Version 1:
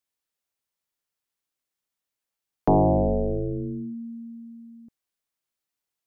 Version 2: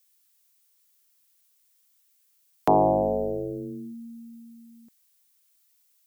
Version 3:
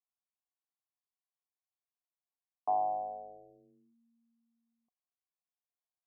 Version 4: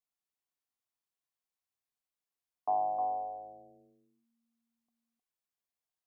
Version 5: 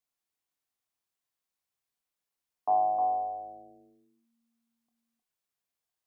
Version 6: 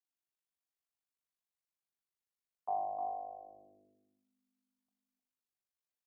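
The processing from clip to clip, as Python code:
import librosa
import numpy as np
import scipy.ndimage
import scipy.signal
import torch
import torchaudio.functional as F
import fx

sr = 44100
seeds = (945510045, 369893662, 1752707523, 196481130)

y1 = fx.tilt_eq(x, sr, slope=4.5)
y1 = y1 * 10.0 ** (4.5 / 20.0)
y2 = fx.formant_cascade(y1, sr, vowel='a')
y2 = y2 * 10.0 ** (-5.5 / 20.0)
y3 = y2 + 10.0 ** (-5.5 / 20.0) * np.pad(y2, (int(310 * sr / 1000.0), 0))[:len(y2)]
y4 = fx.doubler(y3, sr, ms=27.0, db=-9.5)
y4 = y4 * 10.0 ** (3.0 / 20.0)
y5 = y4 * np.sin(2.0 * np.pi * 25.0 * np.arange(len(y4)) / sr)
y5 = fx.echo_feedback(y5, sr, ms=86, feedback_pct=56, wet_db=-12.0)
y5 = y5 * 10.0 ** (-7.0 / 20.0)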